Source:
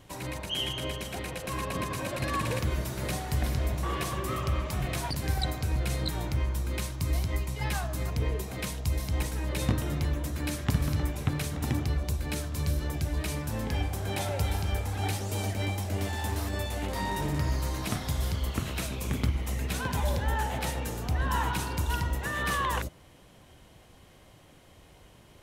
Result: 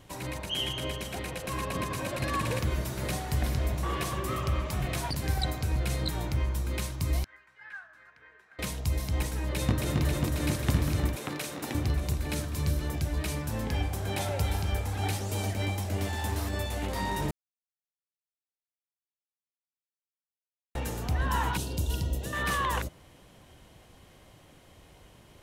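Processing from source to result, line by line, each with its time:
0:07.24–0:08.59: resonant band-pass 1,600 Hz, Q 8.5
0:09.52–0:10.01: delay throw 270 ms, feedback 85%, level −3 dB
0:11.16–0:11.75: high-pass filter 300 Hz
0:17.31–0:20.75: silence
0:21.57–0:22.33: flat-topped bell 1,400 Hz −14 dB

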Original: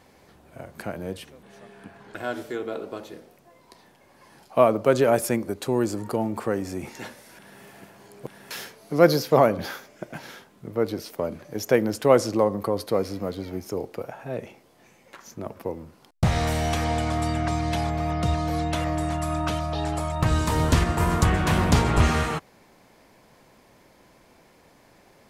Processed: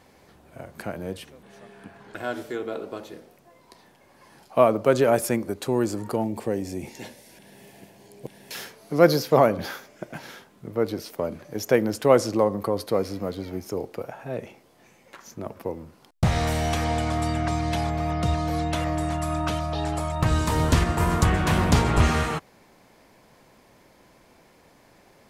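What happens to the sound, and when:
0:06.24–0:08.55: parametric band 1,300 Hz −14.5 dB 0.64 octaves

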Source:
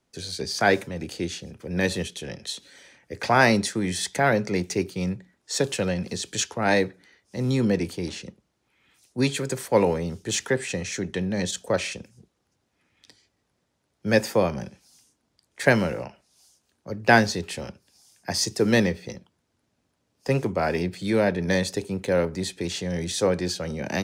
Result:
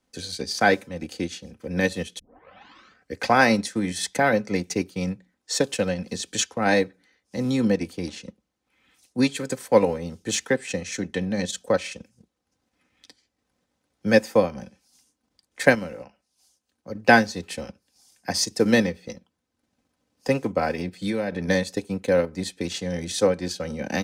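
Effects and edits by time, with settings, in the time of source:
0:02.19: tape start 0.98 s
0:15.75–0:16.95: clip gain −4 dB
0:20.71–0:21.46: downward compressor, threshold −22 dBFS
whole clip: comb filter 3.9 ms, depth 45%; transient designer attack +3 dB, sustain −6 dB; level −1 dB

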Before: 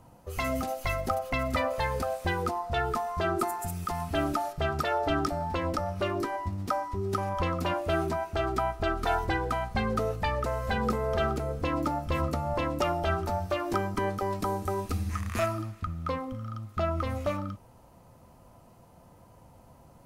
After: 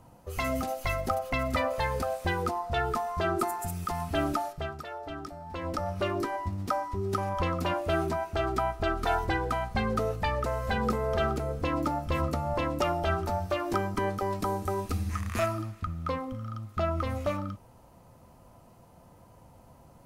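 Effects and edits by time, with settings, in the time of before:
0:04.35–0:05.88: duck −11.5 dB, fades 0.44 s

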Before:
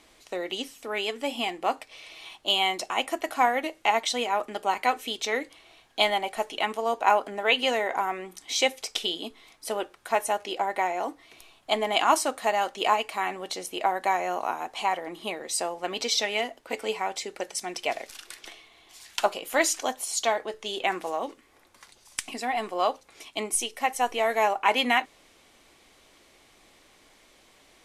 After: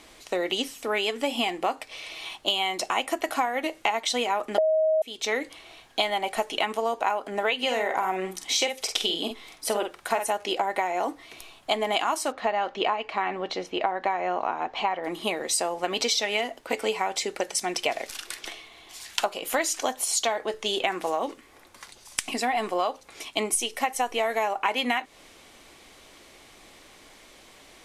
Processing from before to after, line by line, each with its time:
0:04.58–0:05.02: beep over 631 Hz −6 dBFS
0:07.56–0:10.30: double-tracking delay 48 ms −7 dB
0:12.32–0:15.04: high-frequency loss of the air 210 metres
whole clip: downward compressor 12 to 1, threshold −28 dBFS; level +6.5 dB

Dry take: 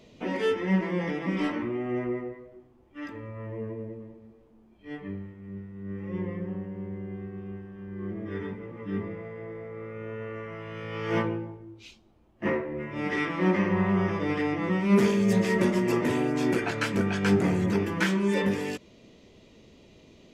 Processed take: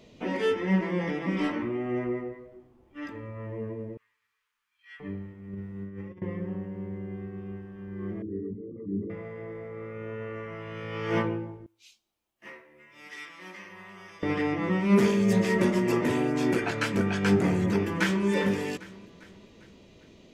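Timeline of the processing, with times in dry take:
0:03.97–0:05.00: inverse Chebyshev high-pass filter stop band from 690 Hz
0:05.53–0:06.22: compressor whose output falls as the input rises −38 dBFS, ratio −0.5
0:08.22–0:09.10: spectral envelope exaggerated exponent 3
0:11.66–0:14.23: first-order pre-emphasis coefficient 0.97
0:17.54–0:18.25: delay throw 400 ms, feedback 50%, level −14.5 dB

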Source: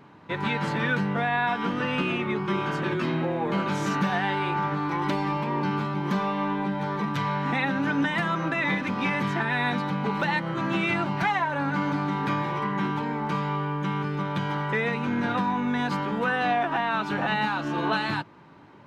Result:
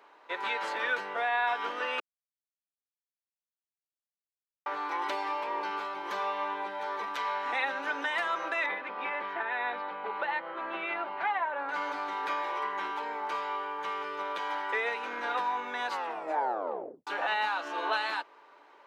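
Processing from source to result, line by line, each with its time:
0:02.00–0:04.66: silence
0:08.66–0:11.69: high-frequency loss of the air 370 metres
0:13.24–0:14.31: delay throw 540 ms, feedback 70%, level −8 dB
0:15.89: tape stop 1.18 s
whole clip: high-pass filter 460 Hz 24 dB per octave; level −3 dB

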